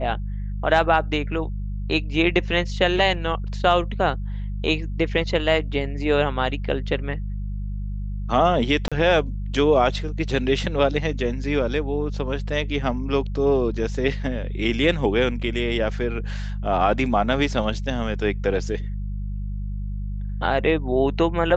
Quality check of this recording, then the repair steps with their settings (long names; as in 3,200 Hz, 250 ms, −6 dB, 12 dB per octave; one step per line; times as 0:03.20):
mains hum 50 Hz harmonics 4 −28 dBFS
0:08.88–0:08.92: drop-out 36 ms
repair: hum removal 50 Hz, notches 4
repair the gap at 0:08.88, 36 ms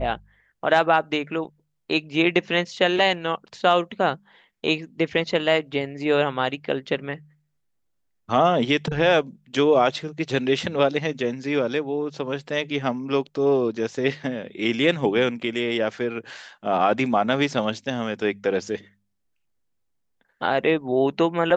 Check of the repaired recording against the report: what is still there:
none of them is left